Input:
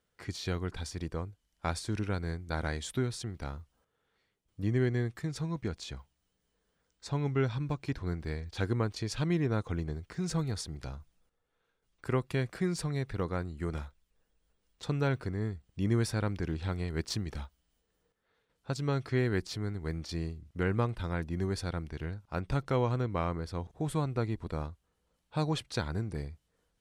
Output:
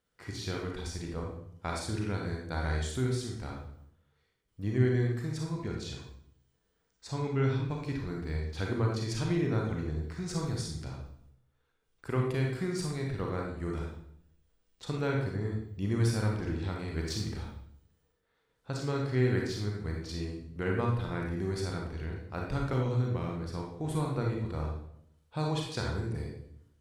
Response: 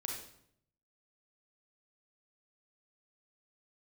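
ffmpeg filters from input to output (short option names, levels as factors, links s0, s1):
-filter_complex "[0:a]asettb=1/sr,asplit=3[s0][s1][s2];[s0]atrim=end=22.734[s3];[s1]atrim=start=22.73:end=23.42,asetpts=PTS-STARTPTS,afade=t=in:d=0.004:c=qsin,afade=t=out:st=0.686:d=0.004:c=qsin,acrossover=split=380|3000[s4][s5][s6];[s5]acompressor=threshold=0.00891:ratio=3[s7];[s4][s7][s6]amix=inputs=3:normalize=0[s8];[s2]atrim=start=23.416[s9];[s3][s8]acrossfade=d=0.004:c1=hsin:c2=qsin[s10];[s10][s9]acrossfade=d=0.004:c1=qsin:c2=hsin[s11];[1:a]atrim=start_sample=2205[s12];[s11][s12]afir=irnorm=-1:irlink=0"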